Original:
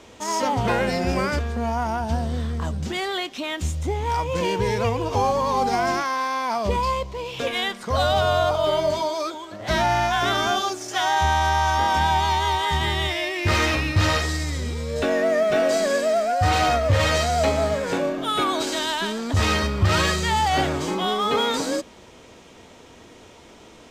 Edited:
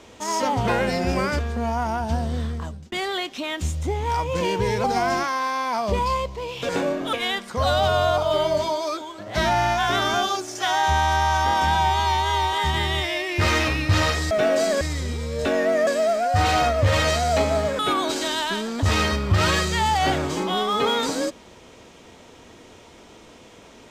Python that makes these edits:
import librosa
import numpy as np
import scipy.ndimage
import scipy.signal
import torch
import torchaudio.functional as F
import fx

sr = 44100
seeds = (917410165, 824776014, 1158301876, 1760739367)

y = fx.edit(x, sr, fx.fade_out_span(start_s=2.45, length_s=0.47),
    fx.cut(start_s=4.84, length_s=0.77),
    fx.stretch_span(start_s=12.08, length_s=0.52, factor=1.5),
    fx.move(start_s=15.44, length_s=0.5, to_s=14.38),
    fx.move(start_s=17.86, length_s=0.44, to_s=7.46), tone=tone)